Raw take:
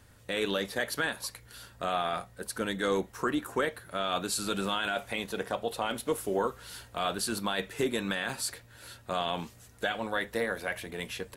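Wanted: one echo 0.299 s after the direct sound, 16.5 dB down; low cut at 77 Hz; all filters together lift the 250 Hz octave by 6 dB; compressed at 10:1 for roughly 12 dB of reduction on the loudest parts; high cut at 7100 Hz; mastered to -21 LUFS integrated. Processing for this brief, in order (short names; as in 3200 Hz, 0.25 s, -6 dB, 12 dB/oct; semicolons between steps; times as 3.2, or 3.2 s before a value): HPF 77 Hz; LPF 7100 Hz; bell 250 Hz +8 dB; compressor 10:1, threshold -33 dBFS; echo 0.299 s -16.5 dB; gain +18 dB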